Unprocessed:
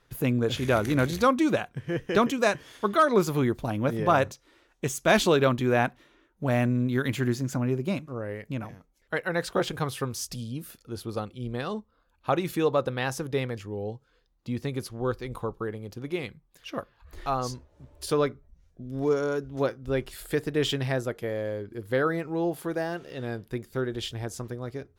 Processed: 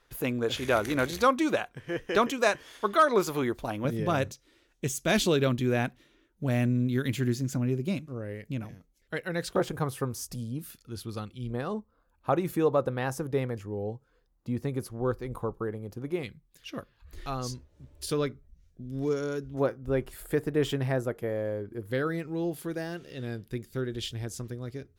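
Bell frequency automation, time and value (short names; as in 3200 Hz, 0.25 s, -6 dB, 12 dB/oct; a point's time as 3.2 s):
bell -9.5 dB 1.8 oct
140 Hz
from 3.85 s 970 Hz
from 9.56 s 3400 Hz
from 10.59 s 620 Hz
from 11.5 s 3600 Hz
from 16.23 s 840 Hz
from 19.54 s 4100 Hz
from 21.91 s 860 Hz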